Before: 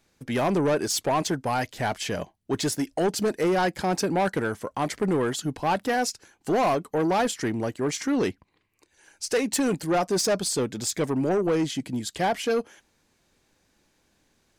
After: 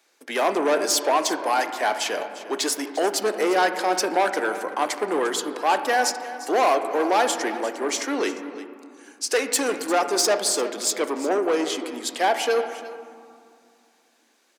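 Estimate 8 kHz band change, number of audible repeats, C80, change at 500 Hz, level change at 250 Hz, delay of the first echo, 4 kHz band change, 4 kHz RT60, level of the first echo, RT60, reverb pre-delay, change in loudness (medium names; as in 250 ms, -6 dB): +5.0 dB, 1, 9.0 dB, +2.5 dB, -3.0 dB, 350 ms, +5.0 dB, 1.1 s, -15.5 dB, 2.3 s, 3 ms, +3.0 dB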